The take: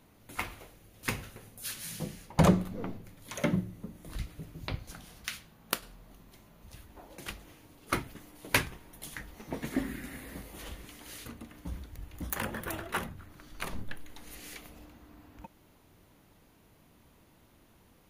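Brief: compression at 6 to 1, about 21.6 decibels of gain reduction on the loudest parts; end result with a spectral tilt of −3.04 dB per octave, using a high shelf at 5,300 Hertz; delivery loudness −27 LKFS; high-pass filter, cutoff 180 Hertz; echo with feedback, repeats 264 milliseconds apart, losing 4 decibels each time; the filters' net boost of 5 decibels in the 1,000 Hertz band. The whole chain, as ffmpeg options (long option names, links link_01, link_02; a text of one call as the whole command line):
ffmpeg -i in.wav -af "highpass=180,equalizer=frequency=1000:width_type=o:gain=6,highshelf=frequency=5300:gain=3,acompressor=threshold=-43dB:ratio=6,aecho=1:1:264|528|792|1056|1320|1584|1848|2112|2376:0.631|0.398|0.25|0.158|0.0994|0.0626|0.0394|0.0249|0.0157,volume=19dB" out.wav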